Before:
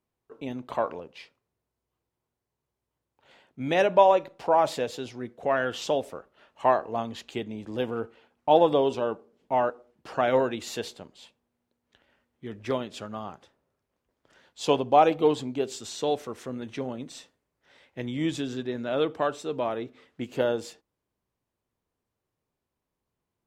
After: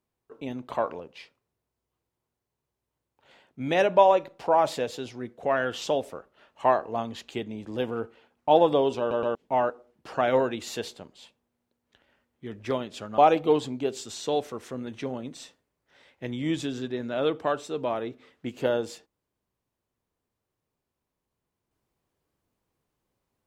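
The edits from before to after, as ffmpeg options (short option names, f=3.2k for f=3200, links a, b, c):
-filter_complex "[0:a]asplit=5[a][b][c][d][e];[a]atrim=end=9.112[f];[b]atrim=start=8.988:end=9.112[g];[c]atrim=start=8.988:end=9.112[h];[d]atrim=start=9.348:end=13.182[i];[e]atrim=start=14.928[j];[f][g]acrossfade=d=0.004:c1=hsin:c2=hsin[k];[k][h]acrossfade=d=0.004:c1=hsin:c2=hsin[l];[l][i]acrossfade=d=0.004:c1=hsin:c2=hsin[m];[m][j]acrossfade=d=0.004:c1=hsin:c2=hsin"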